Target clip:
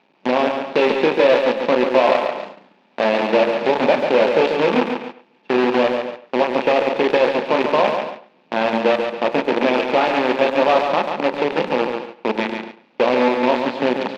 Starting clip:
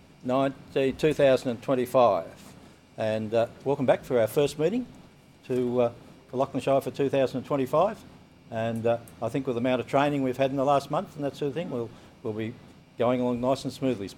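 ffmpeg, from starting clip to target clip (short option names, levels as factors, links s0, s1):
-filter_complex "[0:a]asettb=1/sr,asplit=3[s0][s1][s2];[s0]atrim=end=3.264[s3];[s1]atrim=start=3.26:end=4.83,asetpts=PTS-STARTPTS,afade=t=in:d=0.004:c=qsin,afade=t=out:st=1.566:d=0.004:c=qsin,aeval=exprs='val(0)+0.5*0.0251*sgn(val(0))':c=same[s4];[s2]atrim=start=4.826[s5];[s3][s4]acrossfade=d=0.004:c1=hsin:c2=qsin[s6];[s6][s5]acrossfade=d=0.004:c1=qsin:c2=hsin,asplit=2[s7][s8];[s8]adelay=32,volume=0.562[s9];[s7][s9]amix=inputs=2:normalize=0,asplit=2[s10][s11];[s11]alimiter=limit=0.2:level=0:latency=1:release=360,volume=1.33[s12];[s10][s12]amix=inputs=2:normalize=0,acompressor=threshold=0.0251:ratio=2,acrusher=bits=5:dc=4:mix=0:aa=0.000001,asplit=2[s13][s14];[s14]aecho=0:1:140|280|420|560|700:0.501|0.21|0.0884|0.0371|0.0156[s15];[s13][s15]amix=inputs=2:normalize=0,agate=range=0.126:threshold=0.0158:ratio=16:detection=peak,highpass=f=190:w=0.5412,highpass=f=190:w=1.3066,equalizer=f=210:t=q:w=4:g=5,equalizer=f=350:t=q:w=4:g=4,equalizer=f=530:t=q:w=4:g=6,equalizer=f=880:t=q:w=4:g=10,equalizer=f=1700:t=q:w=4:g=3,equalizer=f=2500:t=q:w=4:g=7,lowpass=f=4200:w=0.5412,lowpass=f=4200:w=1.3066,asplit=2[s16][s17];[s17]adelay=100,highpass=300,lowpass=3400,asoftclip=type=hard:threshold=0.106,volume=0.224[s18];[s16][s18]amix=inputs=2:normalize=0,volume=1.78"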